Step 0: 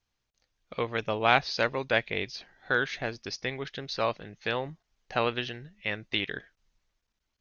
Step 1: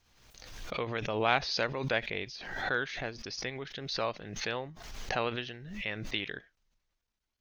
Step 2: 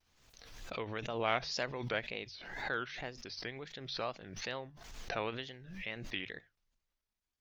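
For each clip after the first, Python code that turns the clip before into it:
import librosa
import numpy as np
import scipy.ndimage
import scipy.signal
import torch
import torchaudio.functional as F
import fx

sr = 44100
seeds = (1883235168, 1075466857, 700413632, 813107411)

y1 = fx.pre_swell(x, sr, db_per_s=49.0)
y1 = y1 * librosa.db_to_amplitude(-5.5)
y2 = fx.hum_notches(y1, sr, base_hz=50, count=3)
y2 = fx.wow_flutter(y2, sr, seeds[0], rate_hz=2.1, depth_cents=150.0)
y2 = y2 * librosa.db_to_amplitude(-5.5)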